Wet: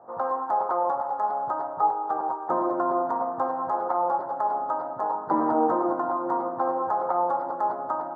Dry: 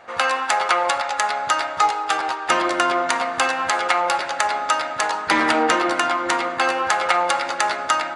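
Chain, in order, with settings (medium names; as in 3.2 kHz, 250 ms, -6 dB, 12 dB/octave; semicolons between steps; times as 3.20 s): elliptic band-pass 110–1000 Hz, stop band 40 dB; trim -2 dB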